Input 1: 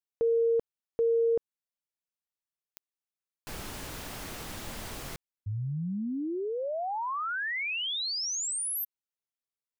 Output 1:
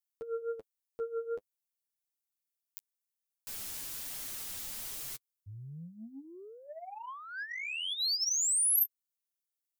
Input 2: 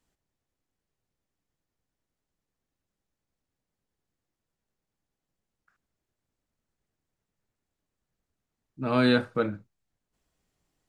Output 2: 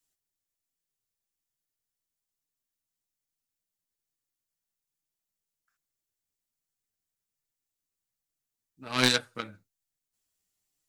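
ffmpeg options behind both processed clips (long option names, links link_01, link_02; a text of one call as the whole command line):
ffmpeg -i in.wav -af "flanger=delay=6.1:depth=5.8:regen=18:speed=1.2:shape=triangular,aeval=exprs='0.2*(cos(1*acos(clip(val(0)/0.2,-1,1)))-cos(1*PI/2))+0.0501*(cos(3*acos(clip(val(0)/0.2,-1,1)))-cos(3*PI/2))':channel_layout=same,crystalizer=i=7.5:c=0" out.wav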